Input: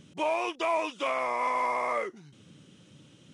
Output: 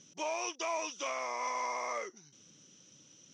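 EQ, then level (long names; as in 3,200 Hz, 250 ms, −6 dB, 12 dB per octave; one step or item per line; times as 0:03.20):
high-pass filter 250 Hz 6 dB per octave
low-pass with resonance 5,900 Hz, resonance Q 14
−7.5 dB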